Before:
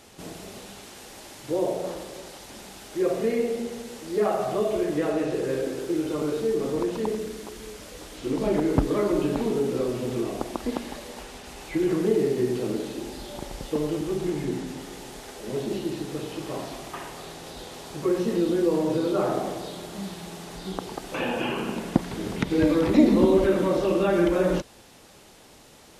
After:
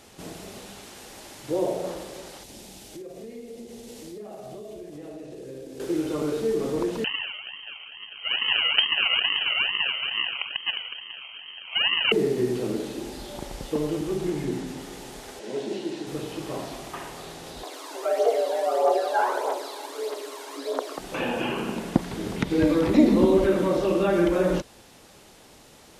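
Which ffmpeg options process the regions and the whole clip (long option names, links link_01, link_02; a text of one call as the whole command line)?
ffmpeg -i in.wav -filter_complex "[0:a]asettb=1/sr,asplit=3[link_01][link_02][link_03];[link_01]atrim=end=2.434[link_04];[link_02]atrim=start=2.43:end=5.8,asetpts=PTS-STARTPTS,afade=type=in:duration=0.004:curve=qsin,afade=type=out:start_time=3.366:duration=0.004:curve=qsin,equalizer=frequency=1300:width_type=o:width=1.5:gain=-11,acompressor=threshold=-37dB:ratio=8:attack=3.2:release=140:knee=1:detection=peak,aecho=1:1:53|675:0.299|0.168,atrim=end_sample=148617[link_05];[link_03]atrim=start=5.796[link_06];[link_04][link_05]acrossfade=duration=0.004:curve1=hsin:curve2=qsin[link_07];[link_07][link_06]acrossfade=duration=0.004:curve1=qsin:curve2=hsin,asettb=1/sr,asplit=3[link_08][link_09][link_10];[link_08]atrim=end=7.044[link_11];[link_09]atrim=start=7.04:end=12.12,asetpts=PTS-STARTPTS,afade=type=in:duration=0.004:curve=qsin,afade=type=out:start_time=5.076:duration=0.004:curve=qsin,acrusher=samples=41:mix=1:aa=0.000001:lfo=1:lforange=24.6:lforate=2.3,lowpass=frequency=2700:width_type=q:width=0.5098,lowpass=frequency=2700:width_type=q:width=0.6013,lowpass=frequency=2700:width_type=q:width=0.9,lowpass=frequency=2700:width_type=q:width=2.563,afreqshift=-3200[link_12];[link_10]atrim=start=12.116[link_13];[link_11][link_12]acrossfade=duration=0.004:curve1=hsin:curve2=qsin[link_14];[link_14][link_13]acrossfade=duration=0.004:curve1=qsin:curve2=hsin,asettb=1/sr,asplit=3[link_15][link_16][link_17];[link_15]atrim=end=15.394[link_18];[link_16]atrim=start=15.39:end=16.07,asetpts=PTS-STARTPTS,afade=type=in:duration=0.004:curve=qsin,afade=type=out:start_time=0.676:duration=0.004:curve=qsin,highpass=260,lowpass=7600,bandreject=frequency=1200:width=7.4[link_19];[link_17]atrim=start=16.066[link_20];[link_18][link_19]acrossfade=duration=0.004:curve1=hsin:curve2=qsin[link_21];[link_21][link_20]acrossfade=duration=0.004:curve1=qsin:curve2=hsin,asettb=1/sr,asplit=3[link_22][link_23][link_24];[link_22]atrim=end=17.634[link_25];[link_23]atrim=start=17.63:end=20.98,asetpts=PTS-STARTPTS,afade=type=in:duration=0.004:curve=qsin,afade=type=out:start_time=3.346:duration=0.004:curve=qsin,aphaser=in_gain=1:out_gain=1:delay=1.7:decay=0.51:speed=1.6:type=triangular,afreqshift=240[link_26];[link_24]atrim=start=20.976[link_27];[link_25][link_26]acrossfade=duration=0.004:curve1=hsin:curve2=qsin[link_28];[link_28][link_27]acrossfade=duration=0.004:curve1=qsin:curve2=hsin" out.wav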